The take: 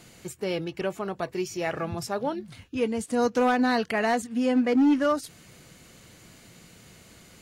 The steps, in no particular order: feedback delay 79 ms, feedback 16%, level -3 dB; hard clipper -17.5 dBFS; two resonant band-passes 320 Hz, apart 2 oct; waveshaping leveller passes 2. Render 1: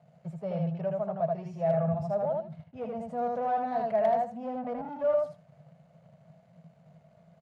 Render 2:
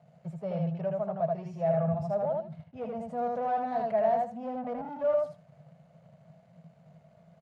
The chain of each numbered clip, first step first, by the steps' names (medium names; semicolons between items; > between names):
feedback delay > waveshaping leveller > two resonant band-passes > hard clipper; hard clipper > feedback delay > waveshaping leveller > two resonant band-passes